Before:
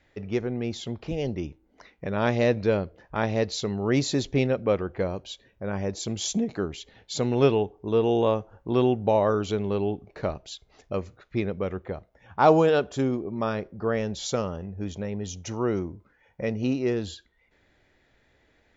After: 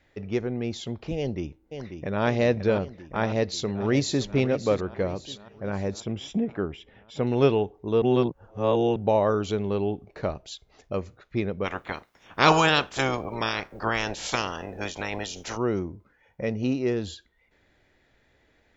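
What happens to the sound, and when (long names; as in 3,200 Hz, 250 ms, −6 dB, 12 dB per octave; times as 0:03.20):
0:01.17–0:02.24: delay throw 540 ms, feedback 70%, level −8 dB
0:03.23–0:04.23: delay throw 570 ms, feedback 45%, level −13 dB
0:06.00–0:07.27: Savitzky-Golay smoothing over 25 samples
0:08.02–0:08.96: reverse
0:11.64–0:15.56: ceiling on every frequency bin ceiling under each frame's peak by 26 dB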